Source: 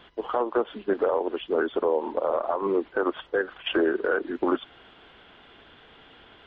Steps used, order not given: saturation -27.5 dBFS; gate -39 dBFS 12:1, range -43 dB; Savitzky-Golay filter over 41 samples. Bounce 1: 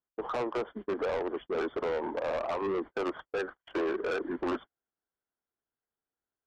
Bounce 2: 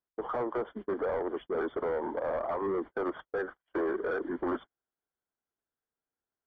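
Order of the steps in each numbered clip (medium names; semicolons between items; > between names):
Savitzky-Golay filter > saturation > gate; saturation > Savitzky-Golay filter > gate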